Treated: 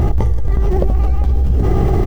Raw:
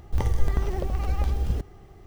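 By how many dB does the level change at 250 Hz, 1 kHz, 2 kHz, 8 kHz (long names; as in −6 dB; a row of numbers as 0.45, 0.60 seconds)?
+15.5 dB, +10.5 dB, +5.5 dB, can't be measured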